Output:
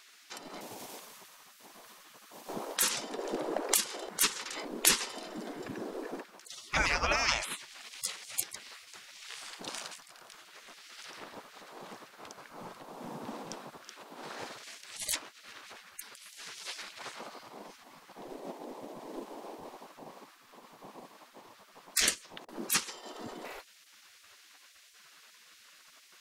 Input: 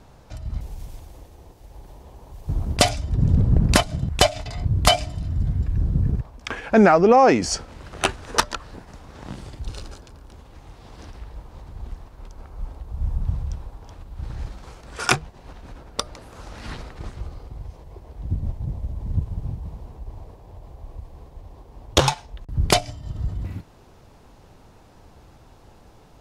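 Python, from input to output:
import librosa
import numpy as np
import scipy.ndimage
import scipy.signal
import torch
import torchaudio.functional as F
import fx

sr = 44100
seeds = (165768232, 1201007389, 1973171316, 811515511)

y = fx.spec_gate(x, sr, threshold_db=-25, keep='weak')
y = y * librosa.db_to_amplitude(6.0)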